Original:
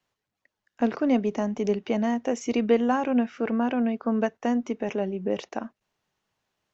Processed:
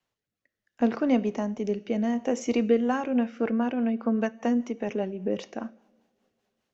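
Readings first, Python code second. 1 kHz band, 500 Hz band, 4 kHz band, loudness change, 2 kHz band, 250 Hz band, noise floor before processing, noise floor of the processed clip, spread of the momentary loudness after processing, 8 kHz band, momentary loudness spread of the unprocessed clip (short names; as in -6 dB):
-3.5 dB, -1.5 dB, -2.0 dB, -1.0 dB, -2.0 dB, -0.5 dB, -85 dBFS, under -85 dBFS, 8 LU, n/a, 7 LU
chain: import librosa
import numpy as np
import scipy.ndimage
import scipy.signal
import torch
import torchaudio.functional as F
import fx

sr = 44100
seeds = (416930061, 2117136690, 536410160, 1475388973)

y = fx.rev_double_slope(x, sr, seeds[0], early_s=0.63, late_s=2.8, knee_db=-21, drr_db=14.5)
y = fx.rotary_switch(y, sr, hz=0.7, then_hz=5.0, switch_at_s=2.4)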